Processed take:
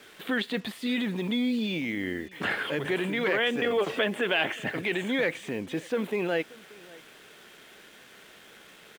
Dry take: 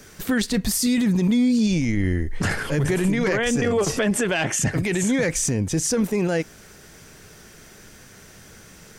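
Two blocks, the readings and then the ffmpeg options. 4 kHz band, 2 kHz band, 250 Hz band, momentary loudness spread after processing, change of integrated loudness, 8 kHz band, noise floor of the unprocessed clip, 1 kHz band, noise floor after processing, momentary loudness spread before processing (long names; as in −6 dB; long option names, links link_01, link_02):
−2.0 dB, −1.5 dB, −9.5 dB, 8 LU, −7.0 dB, −24.5 dB, −47 dBFS, −3.0 dB, −53 dBFS, 6 LU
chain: -filter_complex "[0:a]highpass=310,acrossover=split=3300[link_01][link_02];[link_02]acompressor=threshold=-35dB:ratio=4:attack=1:release=60[link_03];[link_01][link_03]amix=inputs=2:normalize=0,highshelf=frequency=4400:width_type=q:width=3:gain=-9,acrusher=bits=7:mix=0:aa=0.5,aecho=1:1:582:0.0708,volume=-3.5dB"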